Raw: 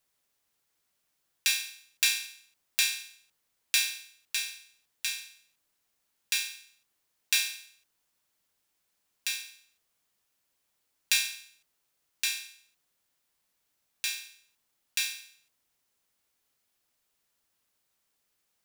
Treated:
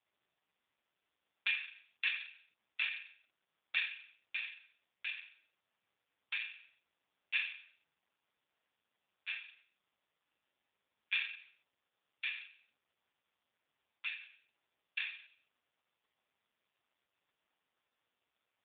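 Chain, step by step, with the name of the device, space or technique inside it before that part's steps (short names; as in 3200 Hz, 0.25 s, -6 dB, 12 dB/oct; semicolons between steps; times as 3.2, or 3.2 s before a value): telephone (BPF 360–3500 Hz; gain +1 dB; AMR-NB 4.75 kbps 8000 Hz)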